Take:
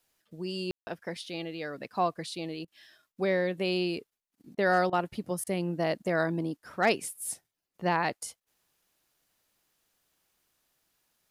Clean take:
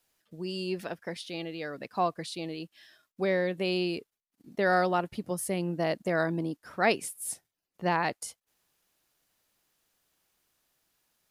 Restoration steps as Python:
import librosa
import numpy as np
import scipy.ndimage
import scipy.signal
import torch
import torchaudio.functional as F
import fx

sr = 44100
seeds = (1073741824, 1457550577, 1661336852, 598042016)

y = fx.fix_declip(x, sr, threshold_db=-15.0)
y = fx.fix_ambience(y, sr, seeds[0], print_start_s=8.41, print_end_s=8.91, start_s=0.71, end_s=0.87)
y = fx.fix_interpolate(y, sr, at_s=(2.65, 4.55, 4.9, 5.44), length_ms=26.0)